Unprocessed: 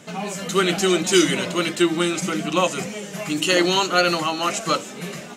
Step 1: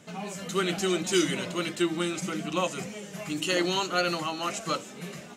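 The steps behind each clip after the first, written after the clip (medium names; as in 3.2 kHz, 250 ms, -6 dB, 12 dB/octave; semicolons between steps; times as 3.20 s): peaking EQ 63 Hz +5.5 dB 2.2 oct; trim -8.5 dB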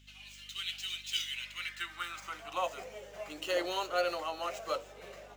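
median filter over 5 samples; high-pass sweep 3 kHz -> 550 Hz, 1.25–2.87 s; hum 50 Hz, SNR 23 dB; trim -8 dB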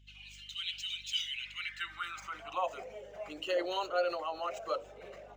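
resonances exaggerated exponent 1.5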